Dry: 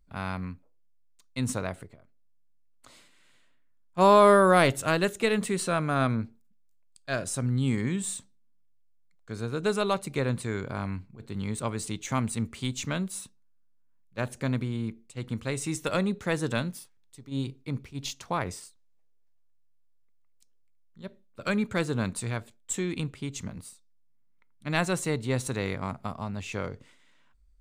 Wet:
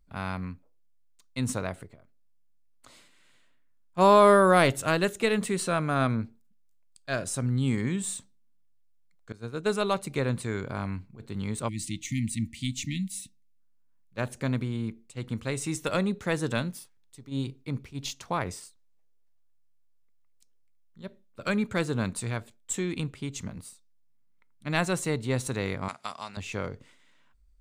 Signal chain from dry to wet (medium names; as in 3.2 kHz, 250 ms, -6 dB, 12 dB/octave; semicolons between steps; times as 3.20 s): 9.32–9.92 s: expander -26 dBFS; 11.68–13.59 s: spectral selection erased 330–1800 Hz; 25.88–26.37 s: frequency weighting ITU-R 468